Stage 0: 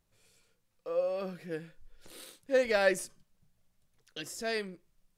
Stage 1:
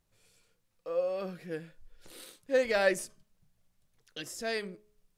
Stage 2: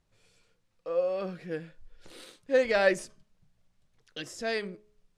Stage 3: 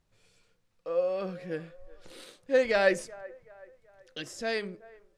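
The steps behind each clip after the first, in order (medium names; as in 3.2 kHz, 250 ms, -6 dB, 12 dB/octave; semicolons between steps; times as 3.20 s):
de-hum 210.5 Hz, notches 6
distance through air 57 m; trim +3 dB
feedback echo behind a band-pass 379 ms, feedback 43%, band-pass 830 Hz, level -19 dB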